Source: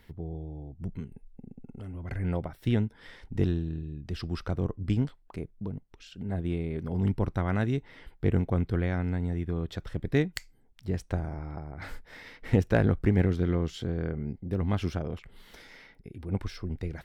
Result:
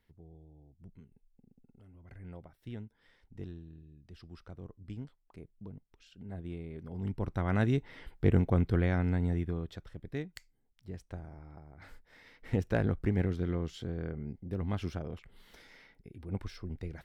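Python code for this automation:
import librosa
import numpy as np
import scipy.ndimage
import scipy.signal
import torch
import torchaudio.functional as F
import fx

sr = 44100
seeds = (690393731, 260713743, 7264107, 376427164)

y = fx.gain(x, sr, db=fx.line((4.79, -17.0), (5.7, -10.5), (6.98, -10.5), (7.63, 0.0), (9.35, 0.0), (9.95, -12.5), (12.05, -12.5), (12.69, -6.0)))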